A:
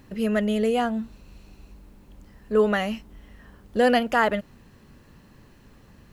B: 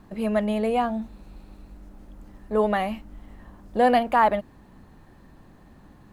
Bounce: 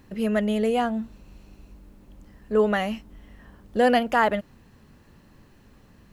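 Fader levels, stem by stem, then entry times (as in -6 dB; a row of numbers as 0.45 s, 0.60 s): -2.5 dB, -11.5 dB; 0.00 s, 0.00 s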